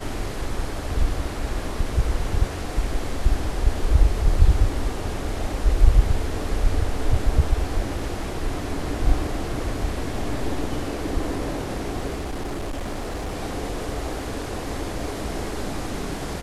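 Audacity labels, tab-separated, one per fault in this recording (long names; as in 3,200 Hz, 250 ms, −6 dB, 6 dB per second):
12.170000	13.340000	clipping −25 dBFS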